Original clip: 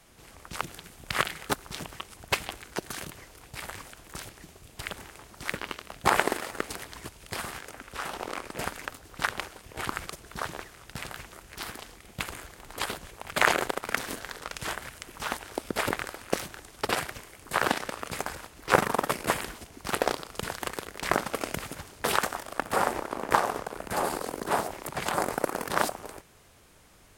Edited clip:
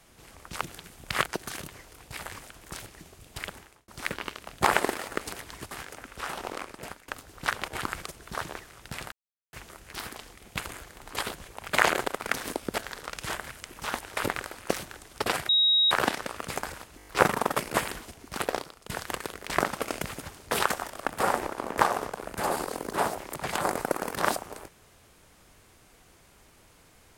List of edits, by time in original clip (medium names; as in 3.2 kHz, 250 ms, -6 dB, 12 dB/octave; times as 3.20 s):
1.26–2.69 s: delete
4.86–5.31 s: fade out
7.14–7.47 s: delete
8.24–8.84 s: fade out linear, to -19.5 dB
9.44–9.72 s: delete
11.16 s: insert silence 0.41 s
15.55–15.80 s: move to 14.16 s
17.12–17.54 s: bleep 3.8 kHz -18.5 dBFS
18.60 s: stutter 0.02 s, 6 plays
19.49–20.42 s: fade out equal-power, to -14.5 dB